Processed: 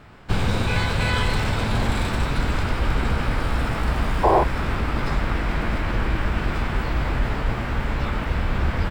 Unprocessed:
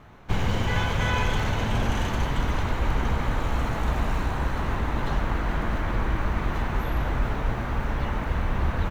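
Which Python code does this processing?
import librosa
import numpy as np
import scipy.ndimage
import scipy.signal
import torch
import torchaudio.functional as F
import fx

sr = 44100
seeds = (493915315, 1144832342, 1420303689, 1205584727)

y = fx.formant_shift(x, sr, semitones=4)
y = fx.spec_paint(y, sr, seeds[0], shape='noise', start_s=4.23, length_s=0.21, low_hz=320.0, high_hz=1100.0, level_db=-19.0)
y = F.gain(torch.from_numpy(y), 2.5).numpy()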